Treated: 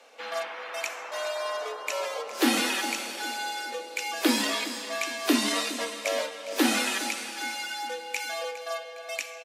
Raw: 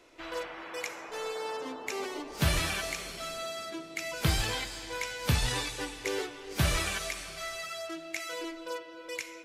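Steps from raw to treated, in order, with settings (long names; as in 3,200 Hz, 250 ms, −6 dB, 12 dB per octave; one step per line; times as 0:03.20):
high-pass filter 72 Hz 12 dB per octave
frequency shifter +170 Hz
on a send: repeating echo 409 ms, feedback 44%, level −15 dB
on the sum: level +4.5 dB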